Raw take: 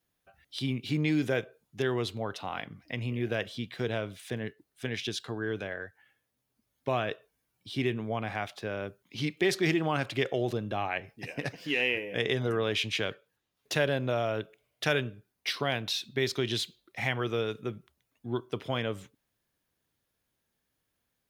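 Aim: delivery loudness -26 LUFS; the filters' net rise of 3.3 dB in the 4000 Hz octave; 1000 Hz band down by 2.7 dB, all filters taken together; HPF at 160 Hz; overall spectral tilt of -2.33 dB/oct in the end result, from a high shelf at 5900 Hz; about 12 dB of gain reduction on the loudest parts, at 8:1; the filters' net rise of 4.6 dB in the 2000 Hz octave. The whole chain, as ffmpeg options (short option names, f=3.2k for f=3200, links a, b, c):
-af "highpass=160,equalizer=f=1k:t=o:g=-6,equalizer=f=2k:t=o:g=7,equalizer=f=4k:t=o:g=4.5,highshelf=f=5.9k:g=-8,acompressor=threshold=-33dB:ratio=8,volume=12dB"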